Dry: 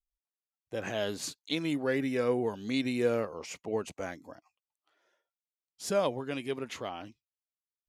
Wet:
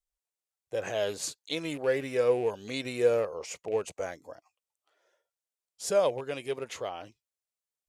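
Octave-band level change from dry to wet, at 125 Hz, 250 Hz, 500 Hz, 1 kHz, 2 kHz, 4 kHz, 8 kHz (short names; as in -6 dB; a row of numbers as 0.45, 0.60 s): -2.5, -6.0, +4.0, +1.0, 0.0, +0.5, +4.0 dB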